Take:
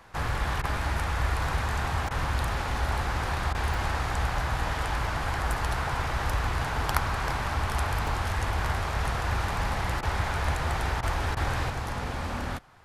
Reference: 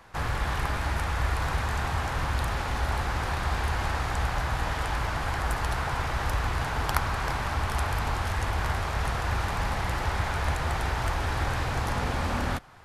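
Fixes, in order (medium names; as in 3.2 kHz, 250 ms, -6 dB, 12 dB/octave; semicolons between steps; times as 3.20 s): interpolate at 2.07/3.74/8.07/11.32 s, 1.5 ms; interpolate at 0.62/2.09/3.53/10.01/11.01/11.35 s, 16 ms; trim 0 dB, from 11.70 s +4 dB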